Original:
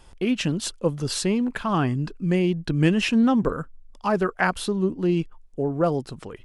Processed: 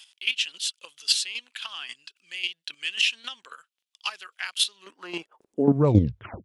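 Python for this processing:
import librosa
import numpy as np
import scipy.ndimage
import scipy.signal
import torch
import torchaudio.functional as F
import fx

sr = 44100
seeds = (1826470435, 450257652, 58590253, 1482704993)

y = fx.tape_stop_end(x, sr, length_s=0.69)
y = fx.chopper(y, sr, hz=3.7, depth_pct=65, duty_pct=15)
y = fx.filter_sweep_highpass(y, sr, from_hz=3100.0, to_hz=96.0, start_s=4.72, end_s=5.93, q=2.5)
y = F.gain(torch.from_numpy(y), 7.5).numpy()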